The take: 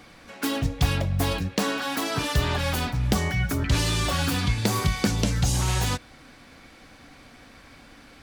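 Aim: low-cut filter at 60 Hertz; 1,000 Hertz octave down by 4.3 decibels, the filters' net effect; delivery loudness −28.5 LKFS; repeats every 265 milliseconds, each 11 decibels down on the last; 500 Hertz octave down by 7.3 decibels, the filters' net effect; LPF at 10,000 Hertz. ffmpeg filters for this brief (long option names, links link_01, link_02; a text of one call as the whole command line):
ffmpeg -i in.wav -af "highpass=60,lowpass=10000,equalizer=frequency=500:width_type=o:gain=-8.5,equalizer=frequency=1000:width_type=o:gain=-3,aecho=1:1:265|530|795:0.282|0.0789|0.0221,volume=-2dB" out.wav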